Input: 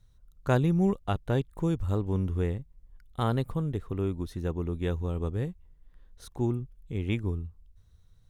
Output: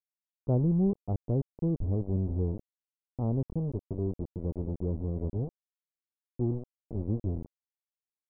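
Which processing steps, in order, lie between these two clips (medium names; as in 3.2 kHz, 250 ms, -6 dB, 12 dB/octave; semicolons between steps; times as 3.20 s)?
local Wiener filter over 25 samples; small samples zeroed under -31.5 dBFS; Gaussian low-pass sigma 14 samples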